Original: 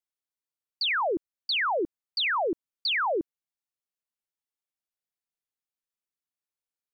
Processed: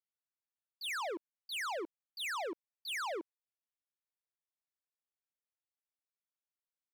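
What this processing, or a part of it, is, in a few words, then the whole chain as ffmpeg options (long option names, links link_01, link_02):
walkie-talkie: -af "highpass=500,lowpass=2700,asoftclip=type=hard:threshold=-36dB,agate=range=-17dB:threshold=-37dB:ratio=16:detection=peak,volume=9.5dB"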